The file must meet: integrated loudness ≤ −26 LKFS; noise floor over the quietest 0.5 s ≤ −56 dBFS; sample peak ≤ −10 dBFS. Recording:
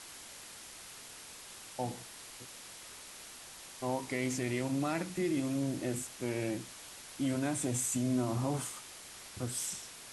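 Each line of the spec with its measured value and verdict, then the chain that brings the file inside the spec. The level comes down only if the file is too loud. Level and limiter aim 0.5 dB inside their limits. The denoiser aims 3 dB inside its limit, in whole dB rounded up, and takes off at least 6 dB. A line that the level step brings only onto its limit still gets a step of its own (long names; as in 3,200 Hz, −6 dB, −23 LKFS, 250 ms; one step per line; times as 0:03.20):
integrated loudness −35.5 LKFS: in spec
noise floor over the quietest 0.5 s −50 dBFS: out of spec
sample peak −21.0 dBFS: in spec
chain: broadband denoise 9 dB, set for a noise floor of −50 dBFS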